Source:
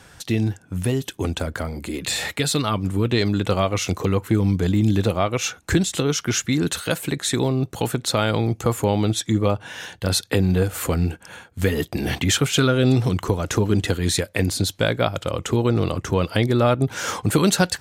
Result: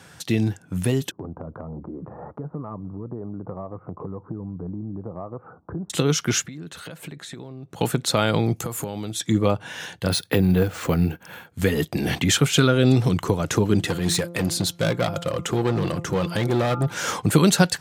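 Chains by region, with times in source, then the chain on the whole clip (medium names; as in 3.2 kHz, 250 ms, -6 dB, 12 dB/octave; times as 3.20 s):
1.11–5.90 s: steep low-pass 1.2 kHz 48 dB/octave + compression 3:1, threshold -33 dBFS
6.43–7.81 s: treble shelf 4.7 kHz -10 dB + compression 16:1, threshold -34 dBFS
8.56–9.20 s: treble shelf 7.4 kHz +10.5 dB + compression 8:1, threshold -25 dBFS
10.10–11.47 s: low-pass 5.4 kHz + careless resampling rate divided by 3×, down none, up hold
13.79–16.94 s: de-hum 172.4 Hz, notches 8 + hard clipper -18 dBFS + comb 5.8 ms, depth 31%
whole clip: high-pass 95 Hz; peaking EQ 160 Hz +6 dB 0.33 oct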